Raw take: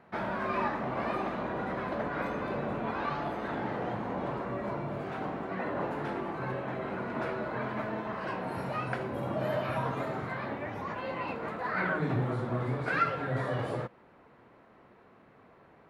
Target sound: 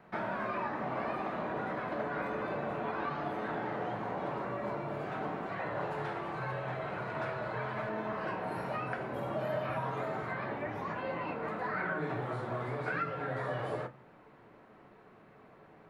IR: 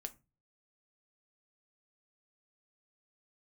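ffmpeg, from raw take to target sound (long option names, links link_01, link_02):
-filter_complex "[0:a]asettb=1/sr,asplit=3[link_01][link_02][link_03];[link_01]atrim=end=5.464[link_04];[link_02]atrim=start=5.46:end=7.89,asetpts=PTS-STARTPTS,afade=type=in:duration=0.004:curve=qsin,afade=type=out:start_time=2.426:duration=0.004:curve=qsin,equalizer=frequency=125:width_type=o:width=1:gain=5,equalizer=frequency=250:width_type=o:width=1:gain=-10,equalizer=frequency=4000:width_type=o:width=1:gain=4,equalizer=frequency=8000:width_type=o:width=1:gain=4[link_05];[link_03]atrim=start=7.886[link_06];[link_04][link_05]acrossfade=duration=0.004:curve1=hsin:curve2=qsin[link_07];[link_07][link_06]acrossfade=duration=0.004:curve1=qsin:curve2=hsin,acrossover=split=440|2600[link_08][link_09][link_10];[link_08]acompressor=threshold=-42dB:ratio=4[link_11];[link_09]acompressor=threshold=-34dB:ratio=4[link_12];[link_10]acompressor=threshold=-59dB:ratio=4[link_13];[link_11][link_12][link_13]amix=inputs=3:normalize=0[link_14];[1:a]atrim=start_sample=2205[link_15];[link_14][link_15]afir=irnorm=-1:irlink=0,volume=4dB"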